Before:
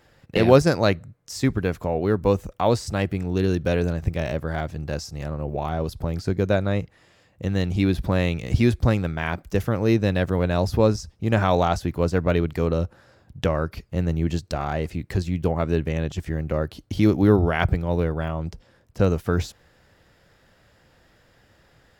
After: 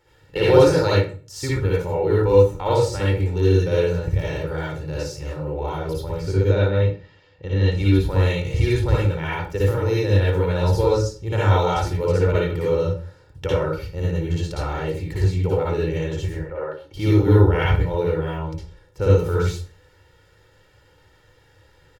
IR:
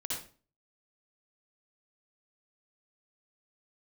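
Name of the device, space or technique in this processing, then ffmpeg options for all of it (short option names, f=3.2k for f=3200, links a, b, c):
microphone above a desk: -filter_complex "[0:a]asettb=1/sr,asplit=3[a][b][c];[a]atrim=end=6.444[d];[b]atrim=start=6.44:end=7.72,asetpts=PTS-STARTPTS,afade=t=in:d=0.004:c=qsin,afade=t=out:st=1.276:d=0.004:c=qsin,lowpass=f=5.1k:w=0.5412,lowpass=f=5.1k:w=1.3066[e];[c]atrim=start=7.716[f];[d][e]acrossfade=d=0.004:c1=hsin:c2=qsin[g];[g][f]acrossfade=d=0.004:c1=qsin:c2=hsin,asettb=1/sr,asplit=3[h][i][j];[h]atrim=end=16.344[k];[i]atrim=start=16.34:end=16.94,asetpts=PTS-STARTPTS,afade=t=in:d=0.004:c=qsin,afade=t=out:st=0.596:d=0.004:c=qsin,acrossover=split=420 2100:gain=0.112 1 0.1[l][m][n];[l][m][n]amix=inputs=3:normalize=0[o];[j]atrim=start=16.936[p];[k][o]acrossfade=d=0.004:c1=hsin:c2=qsin[q];[q][p]acrossfade=d=0.004:c1=qsin:c2=hsin,aecho=1:1:2.2:0.83[r];[1:a]atrim=start_sample=2205[s];[r][s]afir=irnorm=-1:irlink=0,volume=-3dB"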